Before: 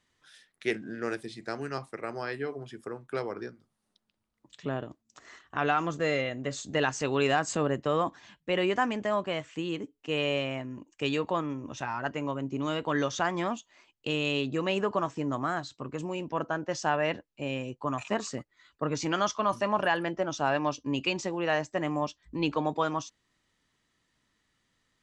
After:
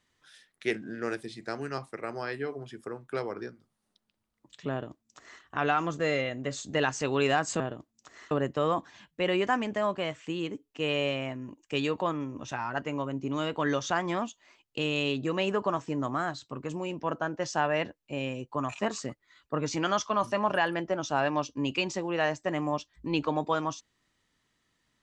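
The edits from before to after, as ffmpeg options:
-filter_complex "[0:a]asplit=3[s0][s1][s2];[s0]atrim=end=7.602[s3];[s1]atrim=start=4.708:end=5.422[s4];[s2]atrim=start=7.598[s5];[s3][s4]acrossfade=d=0.004:c1=hsin:c2=hsin[s6];[s6][s5]acrossfade=d=0.004:c1=hsin:c2=hsin"

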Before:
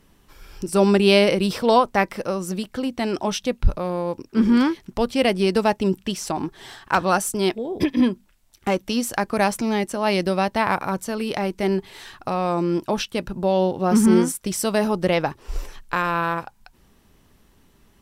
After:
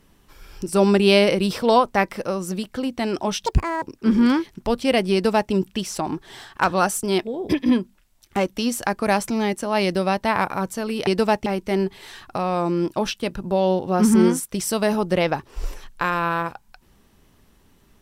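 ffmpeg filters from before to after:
-filter_complex "[0:a]asplit=5[s0][s1][s2][s3][s4];[s0]atrim=end=3.464[s5];[s1]atrim=start=3.46:end=4.13,asetpts=PTS-STARTPTS,asetrate=82026,aresample=44100,atrim=end_sample=15885,asetpts=PTS-STARTPTS[s6];[s2]atrim=start=4.126:end=11.382[s7];[s3]atrim=start=5.438:end=5.832[s8];[s4]atrim=start=11.378[s9];[s5][s6]acrossfade=d=0.004:c1=hsin:c2=hsin[s10];[s10][s7]acrossfade=d=0.004:c1=hsin:c2=hsin[s11];[s11][s8]acrossfade=d=0.004:c1=hsin:c2=hsin[s12];[s12][s9]acrossfade=d=0.004:c1=hsin:c2=hsin"

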